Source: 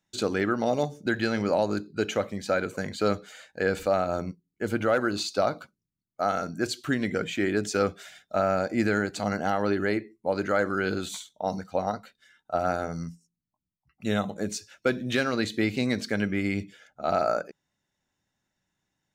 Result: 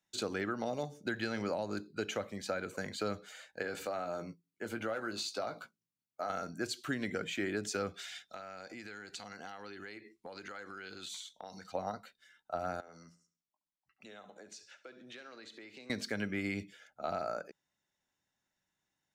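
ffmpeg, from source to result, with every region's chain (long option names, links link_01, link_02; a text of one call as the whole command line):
ffmpeg -i in.wav -filter_complex "[0:a]asettb=1/sr,asplit=3[link_01][link_02][link_03];[link_01]atrim=end=3.624[link_04];[link_02]atrim=start=3.62:end=6.3,asetpts=PTS-STARTPTS,afade=type=in:duration=0.004:curve=qsin,afade=type=out:start_time=2.676:duration=0.004:curve=qsin,highpass=110,acompressor=threshold=-34dB:ratio=1.5:attack=3.2:release=140:knee=1:detection=peak,asplit=2[link_05][link_06];[link_06]adelay=18,volume=-8dB[link_07];[link_05][link_07]amix=inputs=2:normalize=0,atrim=end_sample=118188[link_08];[link_03]atrim=start=6.296[link_09];[link_04][link_08]acrossfade=duration=0.004:curve1=hsin:curve2=qsin[link_10];[link_10][link_09]acrossfade=duration=0.004:curve1=qsin:curve2=hsin,asettb=1/sr,asplit=3[link_11][link_12][link_13];[link_11]atrim=end=7.944[link_14];[link_12]atrim=start=7.94:end=11.72,asetpts=PTS-STARTPTS,afade=type=in:duration=0.004:curve=qsin,afade=type=out:start_time=3.776:duration=0.004:curve=qsin,equalizer=frequency=3900:width_type=o:width=2.4:gain=10,bandreject=frequency=610:width=8.4,acompressor=threshold=-36dB:ratio=16:attack=3.2:release=140:knee=1:detection=peak[link_15];[link_13]atrim=start=11.716[link_16];[link_14][link_15]acrossfade=duration=0.004:curve1=hsin:curve2=qsin[link_17];[link_17][link_16]acrossfade=duration=0.004:curve1=qsin:curve2=hsin,asettb=1/sr,asplit=3[link_18][link_19][link_20];[link_18]atrim=end=12.804[link_21];[link_19]atrim=start=12.8:end=15.9,asetpts=PTS-STARTPTS,afade=type=in:duration=0.004:curve=qsin,afade=type=out:start_time=3.096:duration=0.004:curve=qsin,acrossover=split=260 7600:gain=0.224 1 0.178[link_22][link_23][link_24];[link_22][link_23][link_24]amix=inputs=3:normalize=0,acompressor=threshold=-43dB:ratio=6:attack=3.2:release=140:knee=1:detection=peak,aecho=1:1:70|140|210|280:0.178|0.0711|0.0285|0.0114,atrim=end_sample=136710[link_25];[link_20]atrim=start=15.896[link_26];[link_21][link_25]acrossfade=duration=0.004:curve1=hsin:curve2=qsin[link_27];[link_27][link_26]acrossfade=duration=0.004:curve1=qsin:curve2=hsin,lowshelf=frequency=310:gain=-7.5,acrossover=split=220[link_28][link_29];[link_29]acompressor=threshold=-29dB:ratio=6[link_30];[link_28][link_30]amix=inputs=2:normalize=0,volume=-4dB" out.wav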